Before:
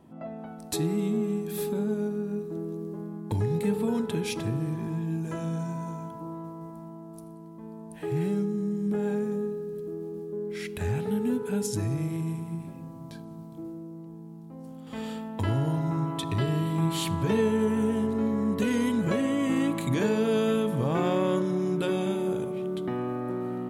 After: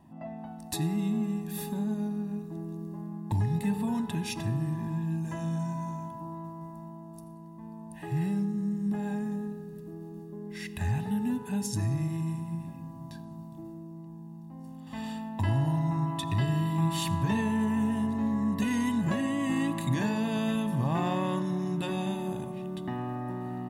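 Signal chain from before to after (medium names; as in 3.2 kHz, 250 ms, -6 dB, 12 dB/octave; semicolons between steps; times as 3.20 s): comb 1.1 ms, depth 74%; on a send: reverberation RT60 0.35 s, pre-delay 80 ms, DRR 19.5 dB; on the sum: trim -3.5 dB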